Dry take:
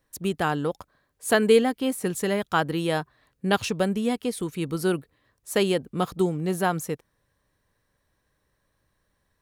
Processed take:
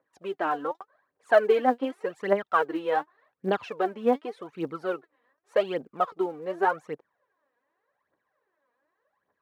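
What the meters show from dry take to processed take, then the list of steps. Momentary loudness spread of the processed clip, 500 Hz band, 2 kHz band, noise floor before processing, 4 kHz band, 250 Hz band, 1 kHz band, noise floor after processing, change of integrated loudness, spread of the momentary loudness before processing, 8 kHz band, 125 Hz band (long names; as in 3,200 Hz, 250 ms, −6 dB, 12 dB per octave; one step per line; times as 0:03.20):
13 LU, −1.0 dB, −2.5 dB, −74 dBFS, −11.5 dB, −7.5 dB, +2.0 dB, −81 dBFS, −2.0 dB, 11 LU, below −20 dB, −15.5 dB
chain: low-pass filter 1,400 Hz 12 dB per octave
phase shifter 0.86 Hz, delay 4.3 ms, feedback 73%
high-pass filter 490 Hz 12 dB per octave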